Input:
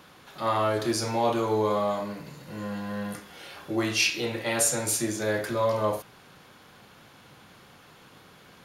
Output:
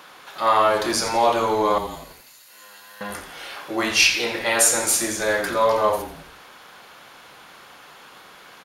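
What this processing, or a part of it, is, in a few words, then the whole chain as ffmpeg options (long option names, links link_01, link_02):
filter by subtraction: -filter_complex "[0:a]asettb=1/sr,asplit=3[link_01][link_02][link_03];[link_01]atrim=end=1.784[link_04];[link_02]atrim=start=1.78:end=3.01,asetpts=PTS-STARTPTS,afade=type=in:duration=0.004:curve=qsin,afade=type=out:start_time=1.226:duration=0.004:curve=qsin,aderivative[link_05];[link_03]atrim=start=3.006[link_06];[link_04][link_05]acrossfade=duration=0.004:curve1=hsin:curve2=qsin[link_07];[link_07][link_06]acrossfade=duration=0.004:curve1=qsin:curve2=hsin,asplit=2[link_08][link_09];[link_09]lowpass=980,volume=-1[link_10];[link_08][link_10]amix=inputs=2:normalize=0,asplit=6[link_11][link_12][link_13][link_14][link_15][link_16];[link_12]adelay=86,afreqshift=-120,volume=-11dB[link_17];[link_13]adelay=172,afreqshift=-240,volume=-17.4dB[link_18];[link_14]adelay=258,afreqshift=-360,volume=-23.8dB[link_19];[link_15]adelay=344,afreqshift=-480,volume=-30.1dB[link_20];[link_16]adelay=430,afreqshift=-600,volume=-36.5dB[link_21];[link_11][link_17][link_18][link_19][link_20][link_21]amix=inputs=6:normalize=0,volume=7dB"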